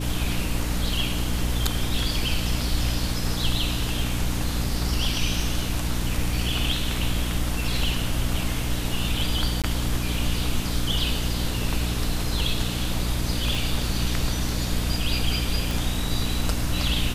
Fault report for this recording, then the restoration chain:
hum 60 Hz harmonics 5 -28 dBFS
9.62–9.64 s: dropout 17 ms
13.55 s: pop
15.71 s: pop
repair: de-click; de-hum 60 Hz, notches 5; interpolate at 9.62 s, 17 ms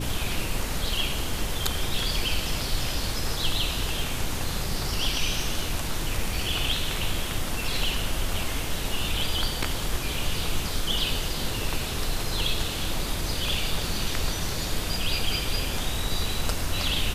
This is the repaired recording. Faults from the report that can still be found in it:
13.55 s: pop

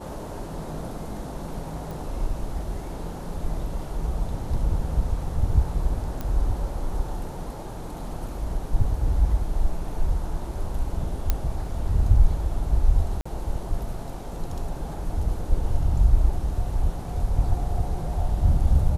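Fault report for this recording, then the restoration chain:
1.91 s: pop
6.21 s: pop -17 dBFS
11.30 s: pop -8 dBFS
13.21–13.26 s: dropout 45 ms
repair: de-click; interpolate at 13.21 s, 45 ms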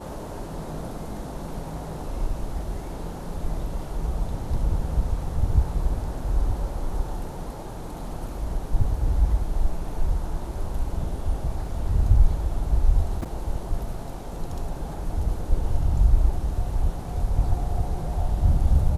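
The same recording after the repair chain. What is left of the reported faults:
nothing left

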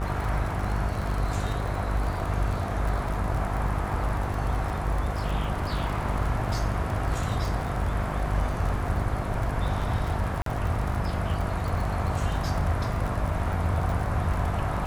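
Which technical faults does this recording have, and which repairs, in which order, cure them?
buzz 50 Hz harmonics 27 -31 dBFS
crackle 36 per s -30 dBFS
10.42–10.46 s: dropout 43 ms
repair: de-click; de-hum 50 Hz, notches 27; interpolate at 10.42 s, 43 ms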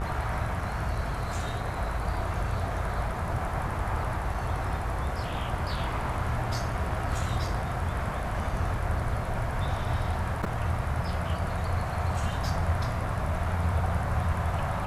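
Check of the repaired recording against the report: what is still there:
nothing left

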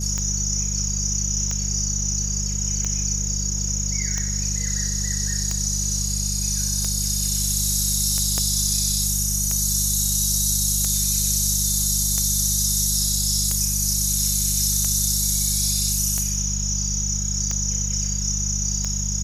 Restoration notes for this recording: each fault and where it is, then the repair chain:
hum 50 Hz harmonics 4 -27 dBFS
tick 45 rpm -12 dBFS
8.38 s: pop -10 dBFS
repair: de-click; de-hum 50 Hz, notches 4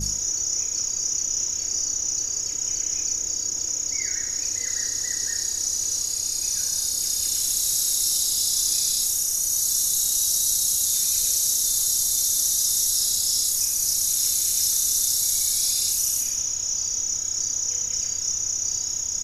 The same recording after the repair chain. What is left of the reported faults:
8.38 s: pop

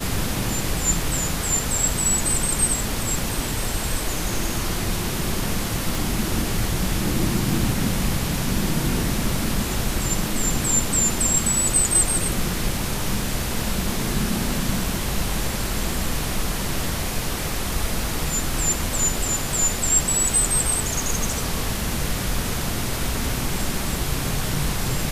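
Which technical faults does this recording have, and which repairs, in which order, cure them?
5.95 s: pop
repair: de-click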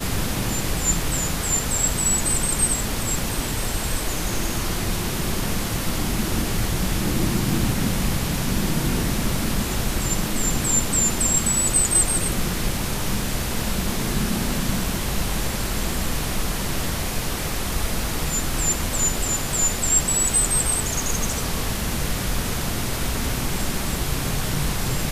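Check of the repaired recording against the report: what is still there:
5.95 s: pop

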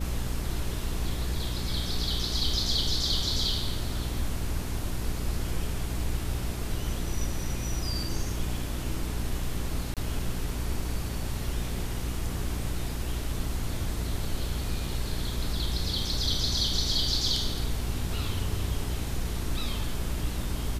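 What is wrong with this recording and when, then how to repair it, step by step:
hum 60 Hz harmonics 7 -34 dBFS
9.94–9.97 s: dropout 27 ms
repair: de-hum 60 Hz, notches 7; interpolate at 9.94 s, 27 ms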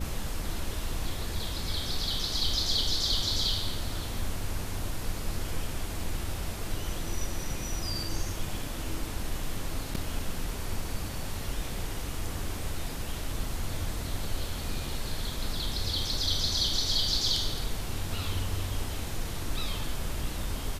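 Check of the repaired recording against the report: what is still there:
nothing left

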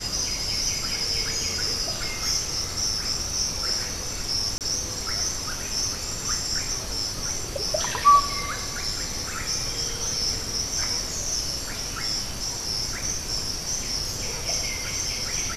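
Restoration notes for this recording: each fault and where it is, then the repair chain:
4.58–4.61 s: dropout 28 ms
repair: interpolate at 4.58 s, 28 ms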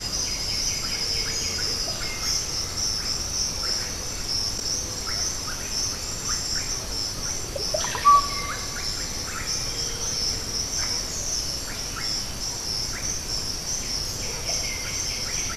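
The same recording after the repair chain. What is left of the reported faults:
nothing left

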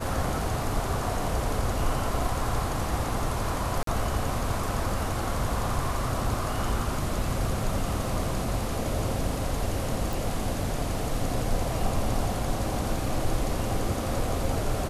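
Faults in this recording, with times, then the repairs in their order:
3.83–3.87 s: dropout 43 ms
10.13 s: pop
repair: de-click; interpolate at 3.83 s, 43 ms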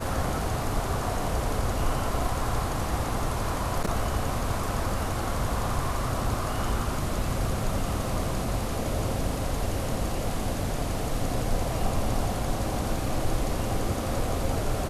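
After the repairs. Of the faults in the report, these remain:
nothing left

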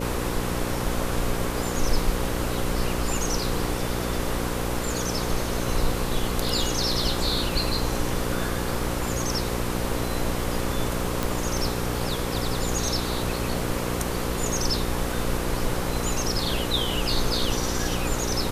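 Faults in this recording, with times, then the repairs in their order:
buzz 60 Hz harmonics 9 -30 dBFS
11.23 s: pop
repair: de-click; de-hum 60 Hz, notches 9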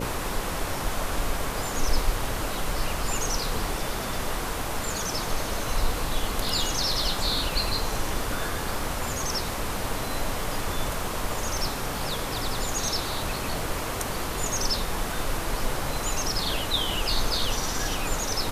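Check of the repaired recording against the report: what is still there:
nothing left

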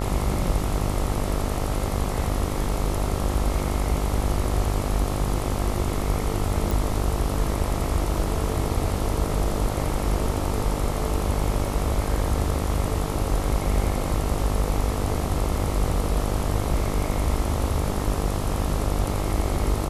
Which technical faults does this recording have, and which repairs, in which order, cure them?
buzz 50 Hz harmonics 27 -28 dBFS
6.71 s: pop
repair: de-click; de-hum 50 Hz, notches 27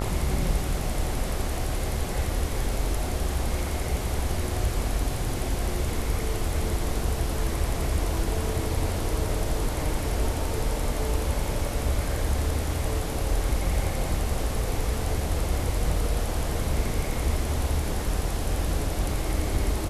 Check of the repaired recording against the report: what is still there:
nothing left

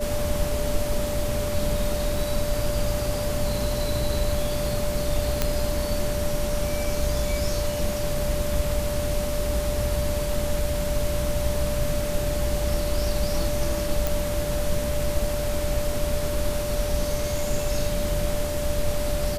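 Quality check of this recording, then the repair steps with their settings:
whine 590 Hz -28 dBFS
2.16 s: dropout 2 ms
5.42 s: pop -6 dBFS
14.07 s: pop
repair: de-click; band-stop 590 Hz, Q 30; interpolate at 2.16 s, 2 ms

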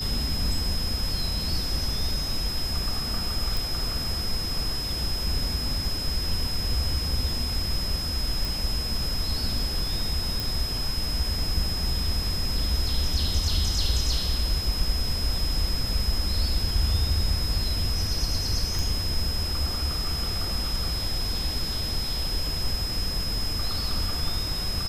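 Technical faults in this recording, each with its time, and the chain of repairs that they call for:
whine 5.1 kHz -30 dBFS
3.57 s: pop
8.45 s: pop
10.40 s: pop
18.79 s: pop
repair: de-click; band-stop 5.1 kHz, Q 30

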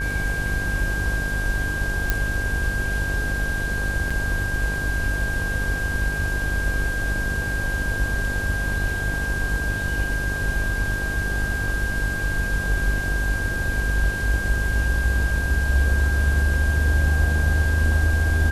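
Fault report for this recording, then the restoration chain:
buzz 50 Hz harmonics 22 -28 dBFS
whine 1.6 kHz -26 dBFS
2.10 s: pop -6 dBFS
4.10–4.11 s: dropout 5.2 ms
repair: de-click; de-hum 50 Hz, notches 22; band-stop 1.6 kHz, Q 30; interpolate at 4.10 s, 5.2 ms

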